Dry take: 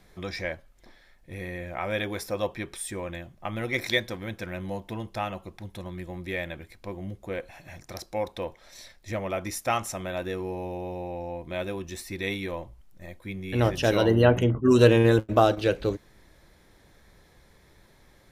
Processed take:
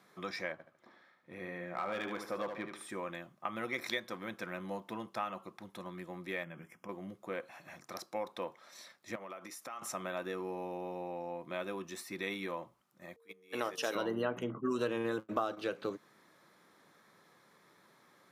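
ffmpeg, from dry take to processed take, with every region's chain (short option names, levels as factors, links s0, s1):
-filter_complex "[0:a]asettb=1/sr,asplit=3[s0][s1][s2];[s0]atrim=end=0.524[s3];[s1]atrim=start=0.52:end=2.9,asetpts=PTS-STARTPTS,afade=t=in:d=0.004:c=qsin,afade=t=out:st=2.376:d=0.004:c=qsin,highshelf=f=4600:g=-12,asoftclip=type=hard:threshold=0.0562,aecho=1:1:74|148|222|296:0.422|0.156|0.0577|0.0214,atrim=end_sample=104958[s4];[s2]atrim=start=2.896[s5];[s3][s4]acrossfade=d=0.004:c1=hsin:c2=qsin[s6];[s6][s5]acrossfade=d=0.004:c1=qsin:c2=hsin,asettb=1/sr,asplit=3[s7][s8][s9];[s7]atrim=end=6.434[s10];[s8]atrim=start=6.43:end=6.89,asetpts=PTS-STARTPTS,afade=t=in:d=0.004:c=qsin,afade=t=out:st=0.456:d=0.004:c=qsin,asuperstop=centerf=4100:order=12:qfactor=2.6,equalizer=f=170:w=2.5:g=10,acompressor=threshold=0.0158:ratio=6:attack=3.2:release=140:knee=1:detection=peak[s11];[s9]atrim=start=6.886[s12];[s10][s11]acrossfade=d=0.004:c1=hsin:c2=qsin[s13];[s13][s12]acrossfade=d=0.004:c1=qsin:c2=hsin,asettb=1/sr,asplit=3[s14][s15][s16];[s14]atrim=end=9.154[s17];[s15]atrim=start=9.15:end=9.82,asetpts=PTS-STARTPTS,afade=t=in:d=0.004:c=qsin,afade=t=out:st=0.666:d=0.004:c=qsin,highpass=f=250:p=1,acompressor=threshold=0.0141:ratio=16:attack=3.2:release=140:knee=1:detection=peak[s18];[s16]atrim=start=9.816[s19];[s17][s18]acrossfade=d=0.004:c1=hsin:c2=qsin[s20];[s20][s19]acrossfade=d=0.004:c1=qsin:c2=hsin,asettb=1/sr,asplit=3[s21][s22][s23];[s21]atrim=end=13.164[s24];[s22]atrim=start=13.16:end=13.95,asetpts=PTS-STARTPTS,afade=t=in:d=0.004:c=qsin,afade=t=out:st=0.786:d=0.004:c=qsin,bass=f=250:g=-14,treble=f=4000:g=7,aeval=exprs='val(0)+0.0112*sin(2*PI*460*n/s)':c=same,agate=range=0.126:threshold=0.0158:ratio=16:release=100:detection=peak[s25];[s23]atrim=start=13.946[s26];[s24][s25]acrossfade=d=0.004:c1=hsin:c2=qsin[s27];[s27][s26]acrossfade=d=0.004:c1=qsin:c2=hsin,highpass=f=160:w=0.5412,highpass=f=160:w=1.3066,equalizer=f=1200:w=2.5:g=10.5,acompressor=threshold=0.0447:ratio=3,volume=0.473"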